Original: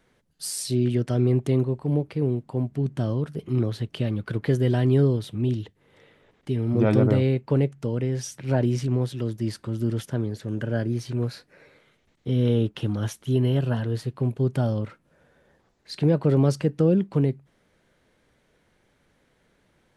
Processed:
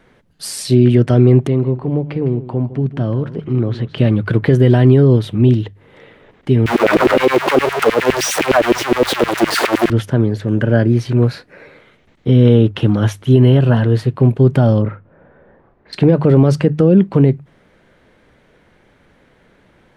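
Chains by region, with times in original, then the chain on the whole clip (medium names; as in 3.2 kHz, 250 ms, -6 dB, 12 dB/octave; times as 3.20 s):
1.47–3.98 s: compression 1.5:1, threshold -36 dBFS + distance through air 100 m + delay 157 ms -14.5 dB
6.66–9.90 s: jump at every zero crossing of -21.5 dBFS + LFO high-pass saw down 9.7 Hz 300–2800 Hz
14.82–15.93 s: low-pass 1.5 kHz + doubling 38 ms -6 dB
whole clip: tone controls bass 0 dB, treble -10 dB; hum notches 50/100/150 Hz; loudness maximiser +14.5 dB; trim -1 dB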